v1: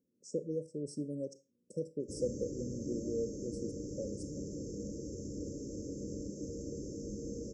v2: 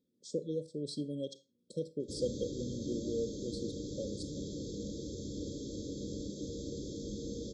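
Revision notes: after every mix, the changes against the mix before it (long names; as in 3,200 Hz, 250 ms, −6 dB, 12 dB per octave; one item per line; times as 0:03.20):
master: remove Chebyshev band-stop filter 1,500–5,500 Hz, order 4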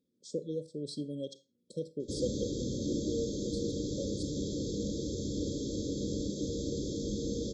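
background +6.0 dB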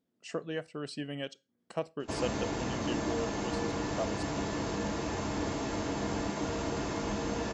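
speech: send −10.0 dB
master: remove linear-phase brick-wall band-stop 590–3,200 Hz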